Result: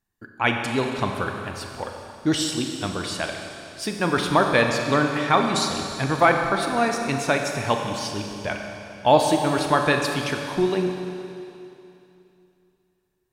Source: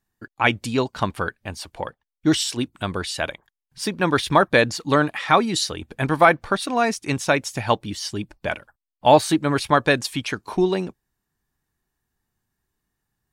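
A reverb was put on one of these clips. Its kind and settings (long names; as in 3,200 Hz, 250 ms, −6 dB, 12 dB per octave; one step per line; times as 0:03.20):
four-comb reverb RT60 2.8 s, combs from 30 ms, DRR 3 dB
level −3 dB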